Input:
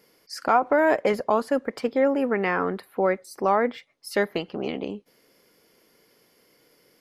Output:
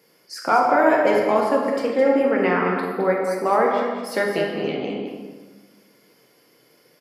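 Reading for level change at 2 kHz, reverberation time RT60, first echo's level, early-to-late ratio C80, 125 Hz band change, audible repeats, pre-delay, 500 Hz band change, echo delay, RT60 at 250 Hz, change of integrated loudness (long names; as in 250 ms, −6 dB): +4.0 dB, 1.5 s, −8.0 dB, 2.5 dB, +4.0 dB, 1, 5 ms, +4.5 dB, 212 ms, 1.6 s, +4.0 dB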